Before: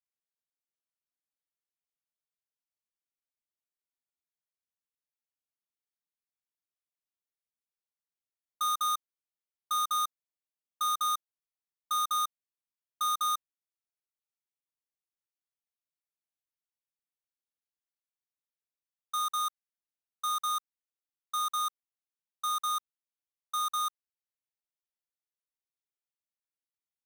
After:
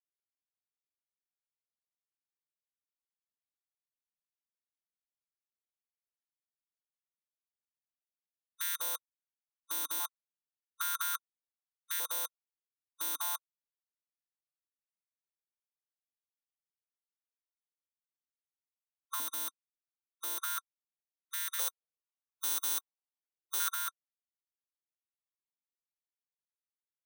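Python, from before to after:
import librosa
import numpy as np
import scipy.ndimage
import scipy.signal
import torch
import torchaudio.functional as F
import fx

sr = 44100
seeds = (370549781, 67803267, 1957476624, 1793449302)

y = fx.high_shelf(x, sr, hz=2400.0, db=8.0, at=(21.59, 23.69))
y = fx.spec_gate(y, sr, threshold_db=-20, keep='weak')
y = fx.filter_held_highpass(y, sr, hz=2.5, low_hz=280.0, high_hz=1800.0)
y = y * librosa.db_to_amplitude(7.0)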